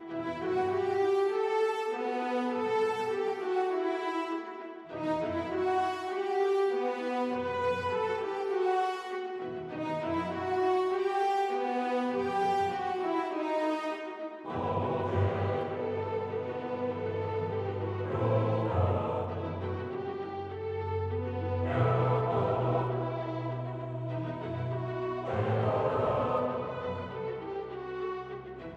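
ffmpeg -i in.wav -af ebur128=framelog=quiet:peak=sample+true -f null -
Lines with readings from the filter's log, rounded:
Integrated loudness:
  I:         -31.7 LUFS
  Threshold: -41.8 LUFS
Loudness range:
  LRA:         2.8 LU
  Threshold: -51.7 LUFS
  LRA low:   -33.0 LUFS
  LRA high:  -30.2 LUFS
Sample peak:
  Peak:      -14.6 dBFS
True peak:
  Peak:      -14.6 dBFS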